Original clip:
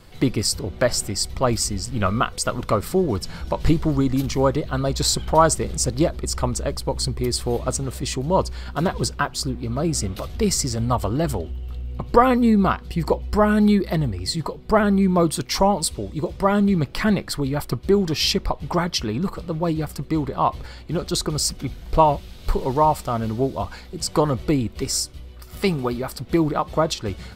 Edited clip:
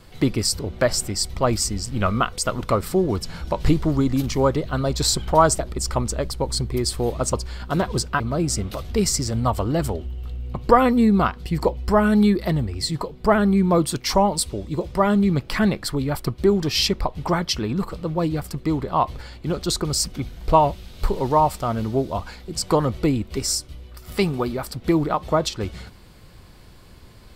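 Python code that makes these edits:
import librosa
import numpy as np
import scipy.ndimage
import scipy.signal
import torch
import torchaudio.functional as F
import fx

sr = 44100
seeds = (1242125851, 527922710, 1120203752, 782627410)

y = fx.edit(x, sr, fx.cut(start_s=5.59, length_s=0.47),
    fx.cut(start_s=7.8, length_s=0.59),
    fx.cut(start_s=9.26, length_s=0.39), tone=tone)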